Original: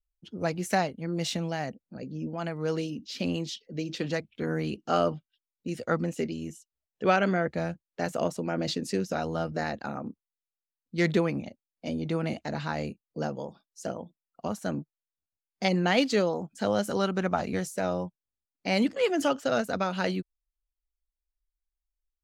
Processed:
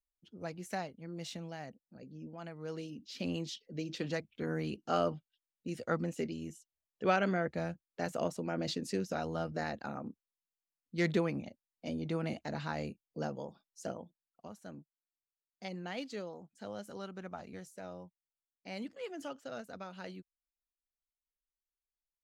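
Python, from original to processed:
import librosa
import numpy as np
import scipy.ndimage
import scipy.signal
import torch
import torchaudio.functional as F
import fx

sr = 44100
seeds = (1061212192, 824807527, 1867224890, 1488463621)

y = fx.gain(x, sr, db=fx.line((2.67, -12.5), (3.38, -6.0), (13.91, -6.0), (14.51, -17.0)))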